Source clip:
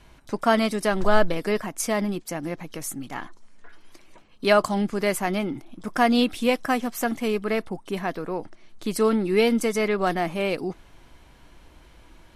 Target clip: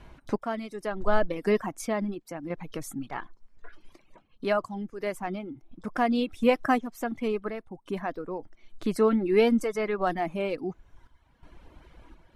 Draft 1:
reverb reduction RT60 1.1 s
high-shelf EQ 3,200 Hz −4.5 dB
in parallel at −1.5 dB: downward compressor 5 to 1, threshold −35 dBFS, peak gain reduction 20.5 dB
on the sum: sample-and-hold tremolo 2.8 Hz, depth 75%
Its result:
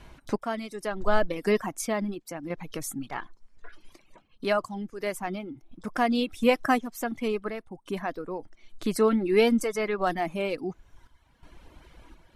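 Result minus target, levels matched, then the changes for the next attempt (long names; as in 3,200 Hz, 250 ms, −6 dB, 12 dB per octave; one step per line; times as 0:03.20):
8,000 Hz band +6.0 dB
change: high-shelf EQ 3,200 Hz −12.5 dB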